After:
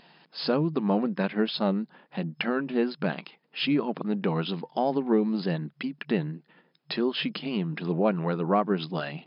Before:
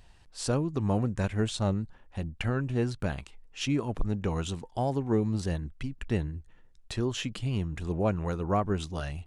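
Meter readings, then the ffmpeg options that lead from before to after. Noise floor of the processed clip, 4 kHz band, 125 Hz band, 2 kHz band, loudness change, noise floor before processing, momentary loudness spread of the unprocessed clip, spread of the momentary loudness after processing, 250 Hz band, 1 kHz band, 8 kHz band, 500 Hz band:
−68 dBFS, +5.5 dB, −3.5 dB, +5.5 dB, +3.0 dB, −57 dBFS, 10 LU, 10 LU, +4.5 dB, +4.5 dB, below −35 dB, +4.5 dB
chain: -filter_complex "[0:a]afftfilt=real='re*between(b*sr/4096,150,5200)':imag='im*between(b*sr/4096,150,5200)':win_size=4096:overlap=0.75,asplit=2[link_01][link_02];[link_02]acompressor=threshold=-39dB:ratio=6,volume=0dB[link_03];[link_01][link_03]amix=inputs=2:normalize=0,volume=2.5dB"

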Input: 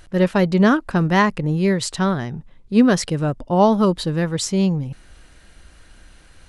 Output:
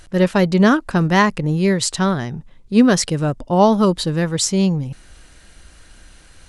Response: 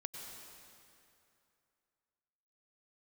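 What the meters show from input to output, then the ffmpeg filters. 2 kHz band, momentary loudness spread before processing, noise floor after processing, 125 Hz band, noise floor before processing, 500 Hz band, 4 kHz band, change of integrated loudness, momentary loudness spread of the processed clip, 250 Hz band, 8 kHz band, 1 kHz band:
+2.0 dB, 8 LU, −47 dBFS, +1.5 dB, −49 dBFS, +1.5 dB, +4.0 dB, +2.0 dB, 8 LU, +1.5 dB, +6.0 dB, +1.5 dB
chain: -af "equalizer=frequency=7500:width_type=o:width=1.7:gain=5,volume=1.5dB"

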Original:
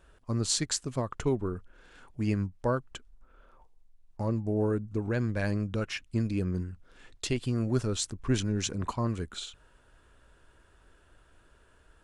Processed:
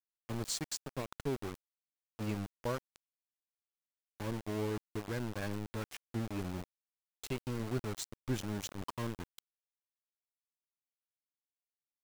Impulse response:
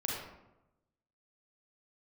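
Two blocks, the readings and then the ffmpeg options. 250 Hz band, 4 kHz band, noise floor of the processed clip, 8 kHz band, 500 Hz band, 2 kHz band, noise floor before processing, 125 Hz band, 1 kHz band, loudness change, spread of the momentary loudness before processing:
−9.0 dB, −9.0 dB, below −85 dBFS, −9.0 dB, −8.0 dB, −7.0 dB, −62 dBFS, −10.0 dB, −6.0 dB, −8.5 dB, 10 LU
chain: -af "afftdn=noise_reduction=14:noise_floor=-46,aeval=exprs='val(0)*gte(abs(val(0)),0.0335)':channel_layout=same,volume=-8dB"

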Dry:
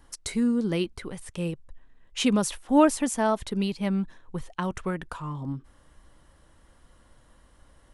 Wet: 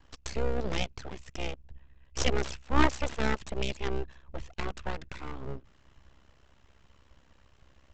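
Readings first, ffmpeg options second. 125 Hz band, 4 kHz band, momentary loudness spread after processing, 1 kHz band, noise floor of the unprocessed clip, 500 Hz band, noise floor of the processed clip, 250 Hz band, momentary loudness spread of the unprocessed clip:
−3.0 dB, −2.5 dB, 15 LU, −4.5 dB, −59 dBFS, −6.0 dB, −62 dBFS, −11.5 dB, 16 LU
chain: -af "equalizer=frequency=2600:width=3.9:gain=9,aeval=exprs='val(0)*sin(2*PI*33*n/s)':channel_layout=same,aresample=16000,aeval=exprs='abs(val(0))':channel_layout=same,aresample=44100"

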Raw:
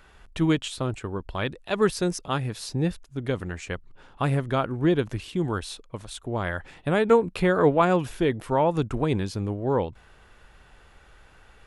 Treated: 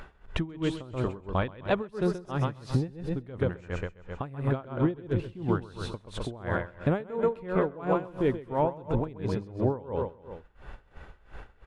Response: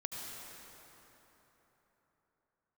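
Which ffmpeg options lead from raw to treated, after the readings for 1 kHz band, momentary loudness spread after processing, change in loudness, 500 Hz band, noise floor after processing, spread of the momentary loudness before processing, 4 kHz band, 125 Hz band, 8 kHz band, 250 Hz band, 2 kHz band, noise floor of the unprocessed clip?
−6.0 dB, 10 LU, −5.0 dB, −5.0 dB, −57 dBFS, 13 LU, −9.0 dB, −2.5 dB, below −10 dB, −4.5 dB, −6.5 dB, −55 dBFS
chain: -filter_complex "[0:a]agate=range=-33dB:threshold=-40dB:ratio=3:detection=peak,lowpass=frequency=1300:poles=1,aecho=1:1:130|260|390|520:0.631|0.221|0.0773|0.0271,acompressor=mode=upward:threshold=-28dB:ratio=2.5,asplit=2[link_01][link_02];[1:a]atrim=start_sample=2205,atrim=end_sample=6174,adelay=132[link_03];[link_02][link_03]afir=irnorm=-1:irlink=0,volume=-13.5dB[link_04];[link_01][link_04]amix=inputs=2:normalize=0,acompressor=threshold=-26dB:ratio=6,aeval=exprs='val(0)*pow(10,-21*(0.5-0.5*cos(2*PI*2.9*n/s))/20)':channel_layout=same,volume=6dB"

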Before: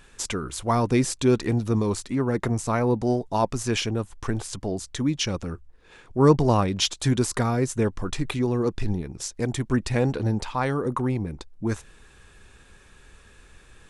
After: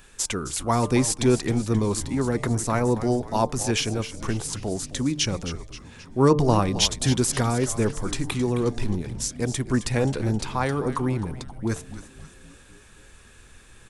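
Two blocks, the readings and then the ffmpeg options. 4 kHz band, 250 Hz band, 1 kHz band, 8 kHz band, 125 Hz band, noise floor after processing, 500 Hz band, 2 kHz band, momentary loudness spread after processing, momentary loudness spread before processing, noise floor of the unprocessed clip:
+2.5 dB, 0.0 dB, +0.5 dB, +5.0 dB, 0.0 dB, −50 dBFS, 0.0 dB, +1.0 dB, 9 LU, 9 LU, −53 dBFS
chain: -filter_complex "[0:a]bandreject=frequency=149:width_type=h:width=4,bandreject=frequency=298:width_type=h:width=4,bandreject=frequency=447:width_type=h:width=4,bandreject=frequency=596:width_type=h:width=4,bandreject=frequency=745:width_type=h:width=4,bandreject=frequency=894:width_type=h:width=4,bandreject=frequency=1043:width_type=h:width=4,bandreject=frequency=1192:width_type=h:width=4,acrossover=split=430[link_01][link_02];[link_02]crystalizer=i=1:c=0[link_03];[link_01][link_03]amix=inputs=2:normalize=0,asplit=6[link_04][link_05][link_06][link_07][link_08][link_09];[link_05]adelay=265,afreqshift=-130,volume=-12dB[link_10];[link_06]adelay=530,afreqshift=-260,volume=-18dB[link_11];[link_07]adelay=795,afreqshift=-390,volume=-24dB[link_12];[link_08]adelay=1060,afreqshift=-520,volume=-30.1dB[link_13];[link_09]adelay=1325,afreqshift=-650,volume=-36.1dB[link_14];[link_04][link_10][link_11][link_12][link_13][link_14]amix=inputs=6:normalize=0"

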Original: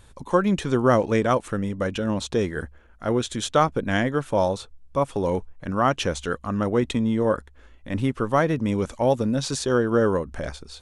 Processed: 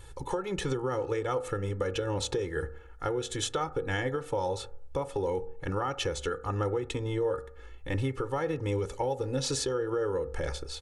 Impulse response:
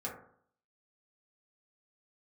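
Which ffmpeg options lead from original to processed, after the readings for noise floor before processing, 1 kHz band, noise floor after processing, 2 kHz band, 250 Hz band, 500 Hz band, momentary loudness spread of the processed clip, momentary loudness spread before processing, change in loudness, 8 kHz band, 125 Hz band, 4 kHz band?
−52 dBFS, −9.5 dB, −47 dBFS, −8.0 dB, −12.5 dB, −7.0 dB, 6 LU, 9 LU, −8.5 dB, −3.0 dB, −6.5 dB, −4.0 dB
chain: -filter_complex "[0:a]aecho=1:1:2.3:0.97,alimiter=limit=-15dB:level=0:latency=1:release=436,acompressor=threshold=-26dB:ratio=6,asplit=2[link_01][link_02];[1:a]atrim=start_sample=2205[link_03];[link_02][link_03]afir=irnorm=-1:irlink=0,volume=-11.5dB[link_04];[link_01][link_04]amix=inputs=2:normalize=0,volume=-2.5dB"

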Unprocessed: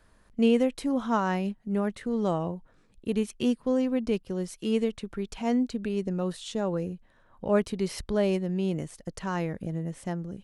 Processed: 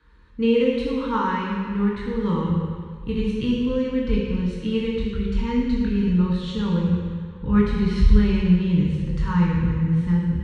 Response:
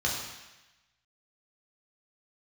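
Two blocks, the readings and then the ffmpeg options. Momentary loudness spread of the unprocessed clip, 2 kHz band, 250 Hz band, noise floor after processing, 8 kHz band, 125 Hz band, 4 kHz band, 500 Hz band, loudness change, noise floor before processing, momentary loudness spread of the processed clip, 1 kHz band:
10 LU, +5.5 dB, +7.0 dB, −37 dBFS, can't be measured, +12.5 dB, +5.0 dB, +2.0 dB, +6.5 dB, −62 dBFS, 7 LU, +4.0 dB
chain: -filter_complex "[0:a]lowpass=4600,asubboost=boost=10.5:cutoff=110,asuperstop=centerf=680:order=8:qfactor=2.1[link_01];[1:a]atrim=start_sample=2205,asetrate=26901,aresample=44100[link_02];[link_01][link_02]afir=irnorm=-1:irlink=0,volume=-7.5dB"

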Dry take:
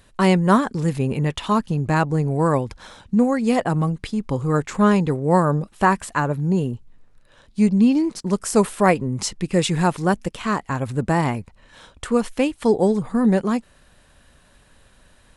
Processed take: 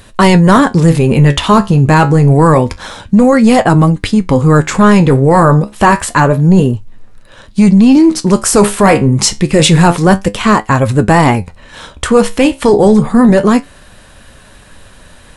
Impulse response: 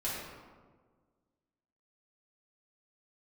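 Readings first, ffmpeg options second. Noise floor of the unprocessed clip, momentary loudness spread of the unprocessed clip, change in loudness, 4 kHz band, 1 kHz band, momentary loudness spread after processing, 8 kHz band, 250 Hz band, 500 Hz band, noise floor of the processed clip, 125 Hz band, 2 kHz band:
−55 dBFS, 8 LU, +11.5 dB, +14.5 dB, +11.0 dB, 5 LU, +14.5 dB, +11.5 dB, +11.0 dB, −39 dBFS, +13.0 dB, +12.0 dB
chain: -af "flanger=delay=9.2:depth=5.7:regen=66:speed=0.28:shape=sinusoidal,apsyclip=21dB,volume=-1.5dB"

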